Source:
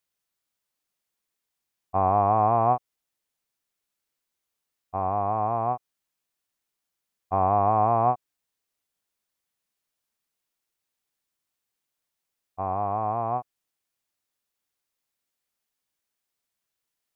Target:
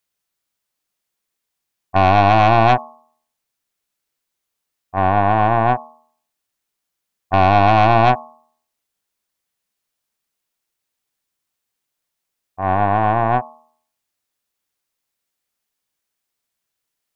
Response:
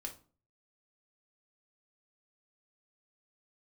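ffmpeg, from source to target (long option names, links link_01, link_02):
-af "agate=range=-6dB:threshold=-28dB:ratio=16:detection=peak,aeval=exprs='0.316*(cos(1*acos(clip(val(0)/0.316,-1,1)))-cos(1*PI/2))+0.112*(cos(2*acos(clip(val(0)/0.316,-1,1)))-cos(2*PI/2))+0.1*(cos(4*acos(clip(val(0)/0.316,-1,1)))-cos(4*PI/2))+0.0282*(cos(5*acos(clip(val(0)/0.316,-1,1)))-cos(5*PI/2))+0.00794*(cos(8*acos(clip(val(0)/0.316,-1,1)))-cos(8*PI/2))':channel_layout=same,bandreject=frequency=78.62:width_type=h:width=4,bandreject=frequency=157.24:width_type=h:width=4,bandreject=frequency=235.86:width_type=h:width=4,bandreject=frequency=314.48:width_type=h:width=4,bandreject=frequency=393.1:width_type=h:width=4,bandreject=frequency=471.72:width_type=h:width=4,bandreject=frequency=550.34:width_type=h:width=4,bandreject=frequency=628.96:width_type=h:width=4,bandreject=frequency=707.58:width_type=h:width=4,bandreject=frequency=786.2:width_type=h:width=4,bandreject=frequency=864.82:width_type=h:width=4,bandreject=frequency=943.44:width_type=h:width=4,bandreject=frequency=1022.06:width_type=h:width=4,bandreject=frequency=1100.68:width_type=h:width=4,bandreject=frequency=1179.3:width_type=h:width=4,bandreject=frequency=1257.92:width_type=h:width=4,volume=7dB"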